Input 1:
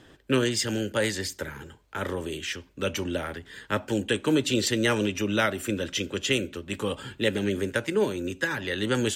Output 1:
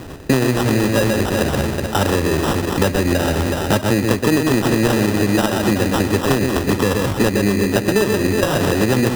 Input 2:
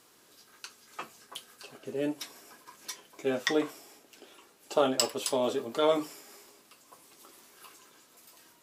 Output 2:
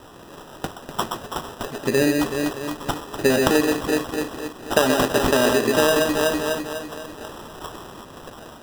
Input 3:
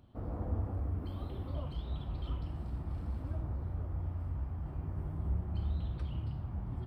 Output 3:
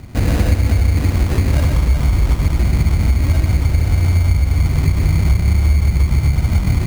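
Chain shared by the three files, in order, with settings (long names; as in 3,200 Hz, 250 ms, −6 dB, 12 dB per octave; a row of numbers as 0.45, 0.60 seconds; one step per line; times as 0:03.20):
phase distortion by the signal itself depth 0.21 ms
floating-point word with a short mantissa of 2 bits
low-shelf EQ 250 Hz +6.5 dB
on a send: delay that swaps between a low-pass and a high-pass 124 ms, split 1,800 Hz, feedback 71%, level −5 dB
on the sum: decimation without filtering 20×
downward compressor 6 to 1, threshold −31 dBFS
normalise the peak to −3 dBFS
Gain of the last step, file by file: +17.5, +16.0, +21.0 decibels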